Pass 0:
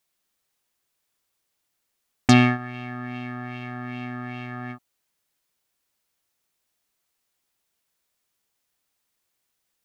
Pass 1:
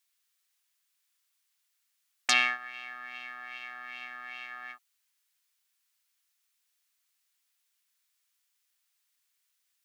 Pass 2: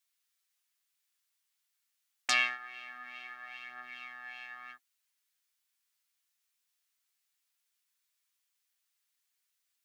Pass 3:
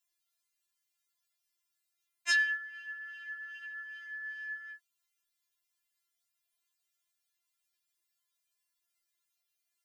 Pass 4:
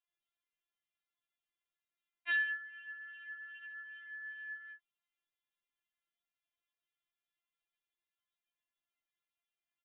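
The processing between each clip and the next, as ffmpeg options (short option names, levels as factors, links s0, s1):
-af "highpass=1500"
-af "flanger=delay=6.9:depth=7.7:regen=43:speed=0.23:shape=sinusoidal"
-af "afftfilt=real='re*4*eq(mod(b,16),0)':imag='im*4*eq(mod(b,16),0)':win_size=2048:overlap=0.75"
-af "aresample=8000,aresample=44100,volume=0.596"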